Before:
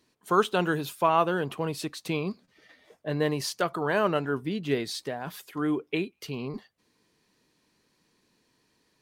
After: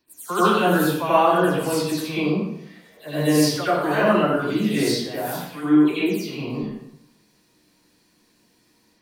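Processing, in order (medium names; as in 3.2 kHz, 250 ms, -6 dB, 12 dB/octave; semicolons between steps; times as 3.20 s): delay that grows with frequency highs early, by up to 162 ms; treble shelf 8.9 kHz +10 dB; reverberation RT60 0.80 s, pre-delay 76 ms, DRR -11 dB; trim -4.5 dB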